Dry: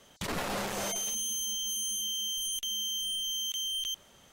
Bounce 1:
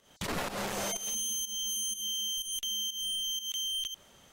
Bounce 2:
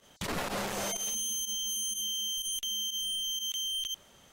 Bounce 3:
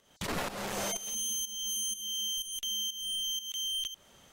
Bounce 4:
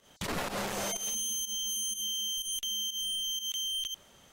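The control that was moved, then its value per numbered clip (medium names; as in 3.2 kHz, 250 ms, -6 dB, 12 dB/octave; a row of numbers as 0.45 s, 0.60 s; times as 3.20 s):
volume shaper, release: 186 ms, 62 ms, 347 ms, 115 ms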